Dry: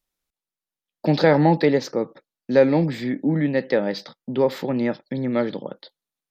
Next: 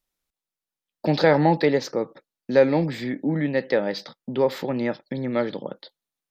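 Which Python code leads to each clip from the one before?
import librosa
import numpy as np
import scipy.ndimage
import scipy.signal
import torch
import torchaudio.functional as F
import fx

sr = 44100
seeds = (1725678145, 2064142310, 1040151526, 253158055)

y = fx.dynamic_eq(x, sr, hz=210.0, q=0.81, threshold_db=-30.0, ratio=4.0, max_db=-4)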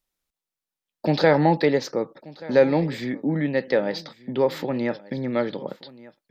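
y = x + 10.0 ** (-20.5 / 20.0) * np.pad(x, (int(1182 * sr / 1000.0), 0))[:len(x)]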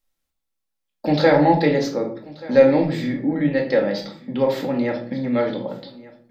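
y = fx.room_shoebox(x, sr, seeds[0], volume_m3=530.0, walls='furnished', distance_m=2.2)
y = y * 10.0 ** (-1.0 / 20.0)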